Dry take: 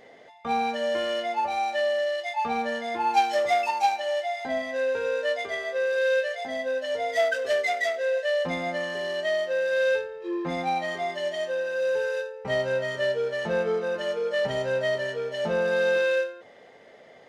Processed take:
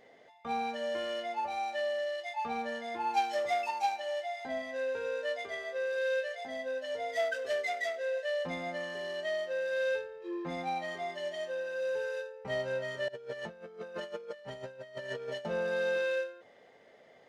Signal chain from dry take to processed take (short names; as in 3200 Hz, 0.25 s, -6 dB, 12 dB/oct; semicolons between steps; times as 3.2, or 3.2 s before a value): 13.08–15.45 negative-ratio compressor -33 dBFS, ratio -0.5; gain -8 dB